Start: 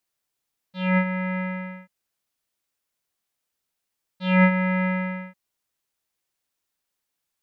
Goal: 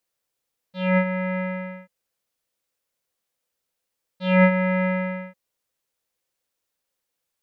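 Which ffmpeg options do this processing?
ffmpeg -i in.wav -af "equalizer=frequency=510:width_type=o:width=0.3:gain=9.5" out.wav

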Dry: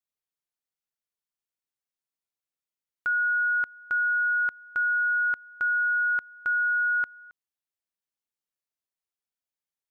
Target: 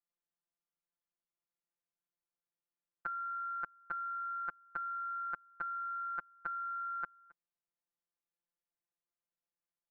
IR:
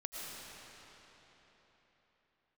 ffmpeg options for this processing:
-af "afftfilt=real='hypot(re,im)*cos(PI*b)':imag='0':win_size=1024:overlap=0.75,lowpass=1600,aeval=exprs='0.0531*(cos(1*acos(clip(val(0)/0.0531,-1,1)))-cos(1*PI/2))+0.000376*(cos(5*acos(clip(val(0)/0.0531,-1,1)))-cos(5*PI/2))':channel_layout=same,volume=2dB"

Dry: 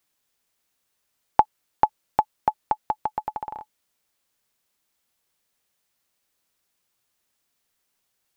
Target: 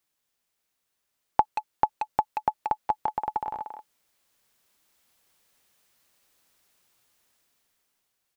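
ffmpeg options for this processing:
ffmpeg -i in.wav -filter_complex "[0:a]asplit=2[link_01][link_02];[link_02]adelay=180,highpass=300,lowpass=3400,asoftclip=type=hard:threshold=-11.5dB,volume=-6dB[link_03];[link_01][link_03]amix=inputs=2:normalize=0,dynaudnorm=framelen=240:gausssize=11:maxgain=11.5dB,volume=-4.5dB" out.wav

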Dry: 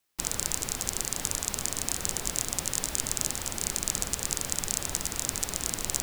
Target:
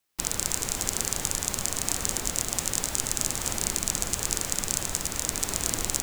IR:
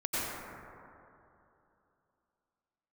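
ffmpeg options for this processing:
-filter_complex "[0:a]asplit=2[link_01][link_02];[1:a]atrim=start_sample=2205,adelay=107[link_03];[link_02][link_03]afir=irnorm=-1:irlink=0,volume=-15dB[link_04];[link_01][link_04]amix=inputs=2:normalize=0,dynaudnorm=framelen=100:gausssize=3:maxgain=11.5dB,volume=-1dB"

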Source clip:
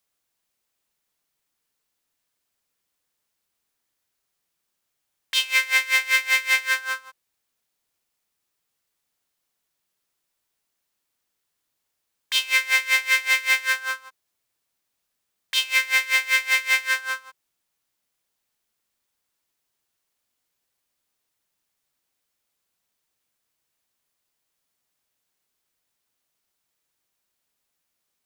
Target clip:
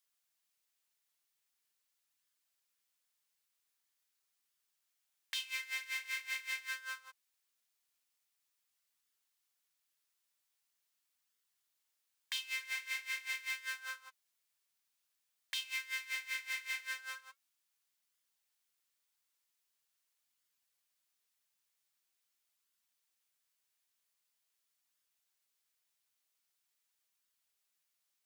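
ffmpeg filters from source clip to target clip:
ffmpeg -i in.wav -af "acompressor=threshold=-35dB:ratio=3,flanger=delay=0.6:depth=9.4:regen=-58:speed=0.44:shape=sinusoidal,tiltshelf=frequency=840:gain=-6.5,volume=-6.5dB" out.wav

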